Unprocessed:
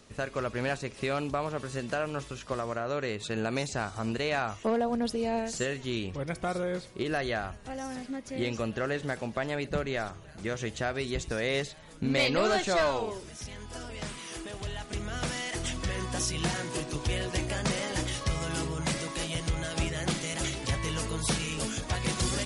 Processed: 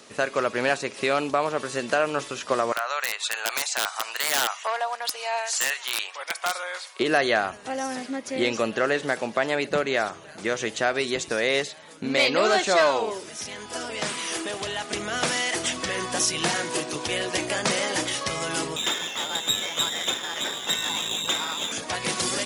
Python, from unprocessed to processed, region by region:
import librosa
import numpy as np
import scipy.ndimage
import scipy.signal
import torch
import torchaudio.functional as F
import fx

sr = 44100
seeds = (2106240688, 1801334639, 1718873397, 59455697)

y = fx.chain(x, sr, fx.highpass(hz=810.0, slope=24),
    fx.overflow_wrap(gain_db=25.5), at=(2.72, 7.0))
y = fx.chain(y, sr, fx.freq_invert(carrier_hz=3800),
    fx.running_max(window=5), at=(18.76, 21.72))
y = scipy.signal.sosfilt(scipy.signal.bessel(2, 350.0, 'highpass', norm='mag', fs=sr, output='sos'), y)
y = fx.rider(y, sr, range_db=4, speed_s=2.0)
y = y * librosa.db_to_amplitude(8.0)